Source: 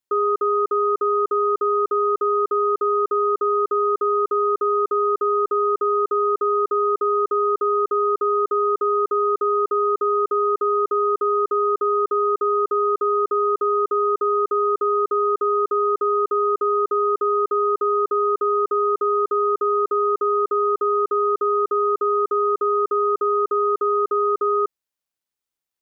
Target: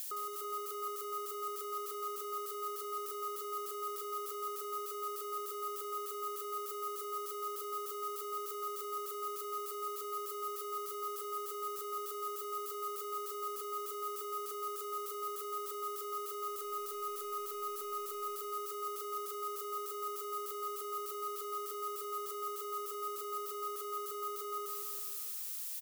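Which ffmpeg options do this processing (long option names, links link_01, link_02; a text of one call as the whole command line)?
ffmpeg -i in.wav -filter_complex "[0:a]aeval=exprs='val(0)+0.5*0.0133*sgn(val(0))':channel_layout=same,aderivative,asettb=1/sr,asplit=3[link_01][link_02][link_03];[link_01]atrim=end=16.484[link_04];[link_02]atrim=start=16.48:end=18.34,asetpts=PTS-STARTPTS,afade=type=in:duration=0.004:curve=qsin,afade=type=out:start_time=1.856:duration=0.004:curve=qsin,aeval=exprs='0.0398*(cos(1*acos(clip(val(0)/0.0398,-1,1)))-cos(1*PI/2))+0.000708*(cos(2*acos(clip(val(0)/0.0398,-1,1)))-cos(2*PI/2))':channel_layout=same[link_05];[link_03]atrim=start=18.336[link_06];[link_04][link_05]acrossfade=duration=0.004:curve1=hsin:curve2=qsin[link_07];[link_07][link_06]acrossfade=duration=0.004:curve1=qsin:curve2=hsin,acrossover=split=330|750[link_08][link_09][link_10];[link_08]acompressor=threshold=-59dB:ratio=4[link_11];[link_09]acompressor=threshold=-54dB:ratio=4[link_12];[link_10]acompressor=threshold=-42dB:ratio=4[link_13];[link_11][link_12][link_13]amix=inputs=3:normalize=0,asplit=2[link_14][link_15];[link_15]aecho=0:1:166|332|498|664|830|996:0.562|0.287|0.146|0.0746|0.038|0.0194[link_16];[link_14][link_16]amix=inputs=2:normalize=0,volume=1.5dB" out.wav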